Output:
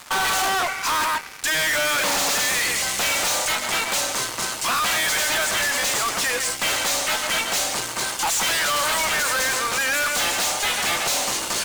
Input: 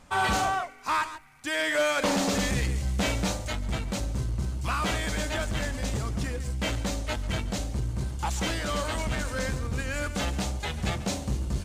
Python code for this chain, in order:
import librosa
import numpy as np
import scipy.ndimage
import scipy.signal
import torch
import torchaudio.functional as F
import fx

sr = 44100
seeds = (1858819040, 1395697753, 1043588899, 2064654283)

y = scipy.signal.sosfilt(scipy.signal.butter(2, 970.0, 'highpass', fs=sr, output='sos'), x)
y = fx.fuzz(y, sr, gain_db=49.0, gate_db=-58.0)
y = y * 10.0 ** (-7.5 / 20.0)